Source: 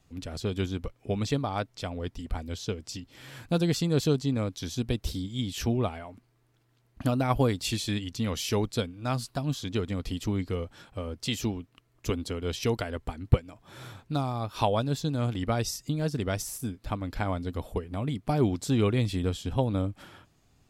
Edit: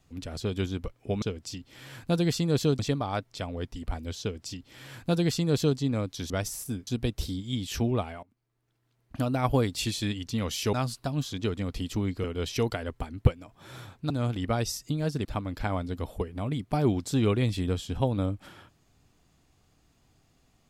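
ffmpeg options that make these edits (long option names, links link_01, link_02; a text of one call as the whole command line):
ffmpeg -i in.wav -filter_complex "[0:a]asplit=10[link_01][link_02][link_03][link_04][link_05][link_06][link_07][link_08][link_09][link_10];[link_01]atrim=end=1.222[link_11];[link_02]atrim=start=2.638:end=4.212[link_12];[link_03]atrim=start=1.218:end=4.732[link_13];[link_04]atrim=start=16.238:end=16.812[link_14];[link_05]atrim=start=4.728:end=6.09,asetpts=PTS-STARTPTS,afade=type=out:start_time=1.358:duration=0.004:curve=hsin:silence=0.0841395[link_15];[link_06]atrim=start=6.09:end=8.592,asetpts=PTS-STARTPTS,afade=type=in:duration=1.29:silence=0.0841395[link_16];[link_07]atrim=start=9.038:end=10.552[link_17];[link_08]atrim=start=12.308:end=14.172[link_18];[link_09]atrim=start=15.088:end=16.242[link_19];[link_10]atrim=start=16.808[link_20];[link_11][link_12]acrossfade=duration=0.004:curve1=hsin:curve2=hsin[link_21];[link_21][link_13]acrossfade=duration=0.004:curve1=hsin:curve2=hsin[link_22];[link_22][link_14]acrossfade=duration=0.004:curve1=hsin:curve2=hsin[link_23];[link_15][link_16]concat=n=2:v=0:a=1[link_24];[link_23][link_24]acrossfade=duration=0.004:curve1=hsin:curve2=hsin[link_25];[link_25][link_17]acrossfade=duration=0.004:curve1=hsin:curve2=hsin[link_26];[link_26][link_18]acrossfade=duration=0.004:curve1=hsin:curve2=hsin[link_27];[link_27][link_19]acrossfade=duration=0.004:curve1=hsin:curve2=hsin[link_28];[link_28][link_20]acrossfade=duration=0.004:curve1=hsin:curve2=hsin" out.wav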